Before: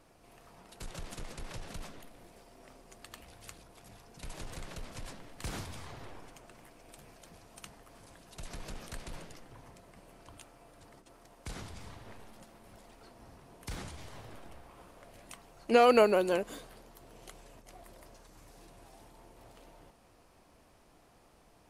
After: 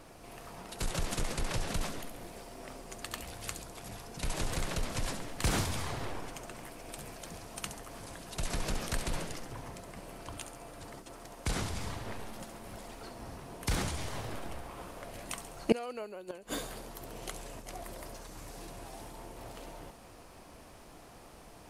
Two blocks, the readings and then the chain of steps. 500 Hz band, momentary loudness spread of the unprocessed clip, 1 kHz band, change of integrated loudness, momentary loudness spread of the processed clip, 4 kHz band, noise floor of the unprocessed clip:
−7.5 dB, 26 LU, −4.5 dB, −6.5 dB, 14 LU, +4.5 dB, −63 dBFS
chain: gate with flip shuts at −21 dBFS, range −28 dB
delay with a high-pass on its return 68 ms, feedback 51%, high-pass 5,600 Hz, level −5 dB
level +9.5 dB

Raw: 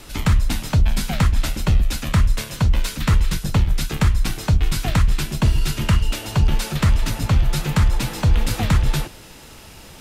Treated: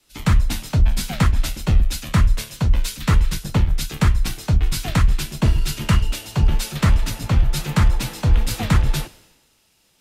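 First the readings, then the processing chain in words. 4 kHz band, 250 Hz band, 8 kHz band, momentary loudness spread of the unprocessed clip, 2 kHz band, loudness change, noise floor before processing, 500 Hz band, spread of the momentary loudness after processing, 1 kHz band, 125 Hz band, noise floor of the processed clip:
−0.5 dB, 0.0 dB, 0.0 dB, 3 LU, −0.5 dB, 0.0 dB, −42 dBFS, −1.0 dB, 3 LU, −0.5 dB, −0.5 dB, −61 dBFS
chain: multiband upward and downward expander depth 100%

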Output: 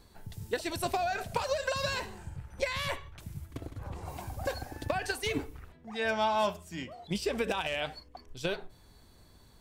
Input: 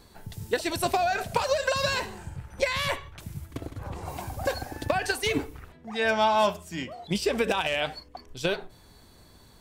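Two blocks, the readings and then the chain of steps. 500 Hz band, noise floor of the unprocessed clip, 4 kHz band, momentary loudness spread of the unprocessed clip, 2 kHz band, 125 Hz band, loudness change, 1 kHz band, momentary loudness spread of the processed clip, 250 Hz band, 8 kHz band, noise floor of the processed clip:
−6.0 dB, −54 dBFS, −6.0 dB, 16 LU, −6.0 dB, −4.0 dB, −6.0 dB, −6.0 dB, 14 LU, −5.5 dB, −6.0 dB, −58 dBFS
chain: low-shelf EQ 85 Hz +5.5 dB
level −6 dB

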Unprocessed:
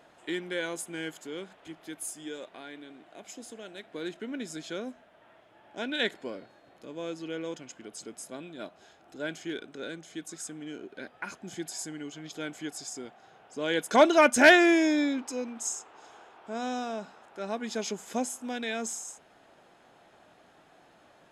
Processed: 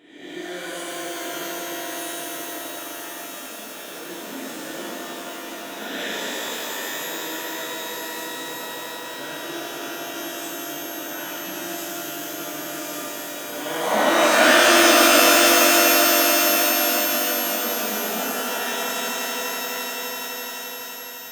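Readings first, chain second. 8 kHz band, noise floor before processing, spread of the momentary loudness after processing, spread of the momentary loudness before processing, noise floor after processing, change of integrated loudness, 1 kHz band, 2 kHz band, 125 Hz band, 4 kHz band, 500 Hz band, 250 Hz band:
+14.5 dB, −60 dBFS, 19 LU, 22 LU, −36 dBFS, +8.5 dB, +9.5 dB, +8.0 dB, +2.0 dB, +14.5 dB, +6.0 dB, +3.5 dB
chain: peak hold with a rise ahead of every peak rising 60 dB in 1.07 s
echo that builds up and dies away 85 ms, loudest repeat 8, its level −13 dB
reverb with rising layers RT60 3.5 s, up +12 semitones, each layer −2 dB, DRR −10 dB
level −12 dB

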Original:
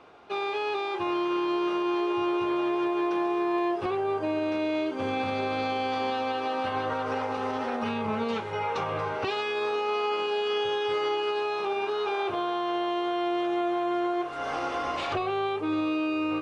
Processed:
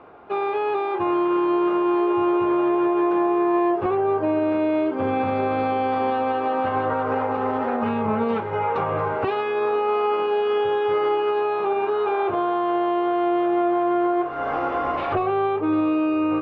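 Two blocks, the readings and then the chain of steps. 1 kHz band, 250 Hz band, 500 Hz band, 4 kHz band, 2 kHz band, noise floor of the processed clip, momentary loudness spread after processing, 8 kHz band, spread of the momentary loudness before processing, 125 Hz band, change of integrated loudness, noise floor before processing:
+6.5 dB, +7.0 dB, +7.0 dB, −5.0 dB, +1.5 dB, −26 dBFS, 4 LU, can't be measured, 3 LU, +7.0 dB, +6.5 dB, −33 dBFS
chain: low-pass filter 1,600 Hz 12 dB per octave
level +7 dB

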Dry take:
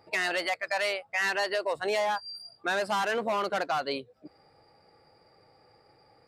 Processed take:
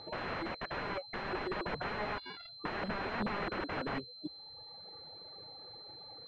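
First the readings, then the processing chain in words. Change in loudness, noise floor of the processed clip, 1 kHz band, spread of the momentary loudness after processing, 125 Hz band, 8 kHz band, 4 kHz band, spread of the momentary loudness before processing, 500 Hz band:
−10.5 dB, −52 dBFS, −8.5 dB, 12 LU, +6.0 dB, below −25 dB, −7.5 dB, 7 LU, −10.0 dB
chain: reverb reduction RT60 1.3 s
wrap-around overflow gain 34 dB
switching amplifier with a slow clock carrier 4,100 Hz
level +7 dB

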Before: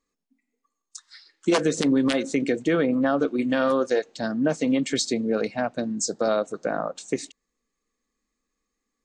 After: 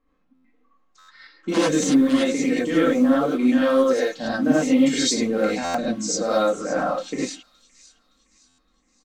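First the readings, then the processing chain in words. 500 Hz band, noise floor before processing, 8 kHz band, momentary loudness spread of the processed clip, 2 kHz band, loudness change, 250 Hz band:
+2.5 dB, −82 dBFS, +4.5 dB, 8 LU, +2.5 dB, +4.0 dB, +4.5 dB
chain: mu-law and A-law mismatch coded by mu
low-pass that shuts in the quiet parts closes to 1,700 Hz, open at −18.5 dBFS
comb filter 3.8 ms, depth 48%
brickwall limiter −13 dBFS, peak gain reduction 7 dB
delay with a high-pass on its return 566 ms, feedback 42%, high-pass 3,600 Hz, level −15.5 dB
reverb whose tail is shaped and stops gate 120 ms rising, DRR −8 dB
buffer that repeats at 0:00.34/0:00.98/0:05.64/0:08.48, samples 512
level −5 dB

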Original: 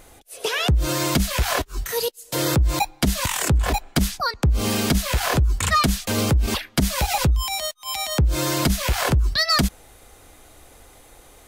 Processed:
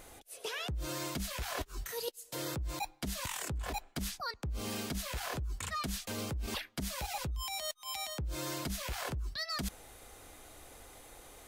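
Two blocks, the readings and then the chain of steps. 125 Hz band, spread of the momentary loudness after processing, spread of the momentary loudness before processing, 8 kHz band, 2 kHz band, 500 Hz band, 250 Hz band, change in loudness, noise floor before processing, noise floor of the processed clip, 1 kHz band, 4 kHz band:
−19.0 dB, 16 LU, 6 LU, −14.5 dB, −15.5 dB, −15.5 dB, −17.5 dB, −16.5 dB, −50 dBFS, −60 dBFS, −16.0 dB, −15.0 dB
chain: low-shelf EQ 200 Hz −3.5 dB
reversed playback
downward compressor 6 to 1, threshold −32 dBFS, peak gain reduction 15.5 dB
reversed playback
level −4 dB

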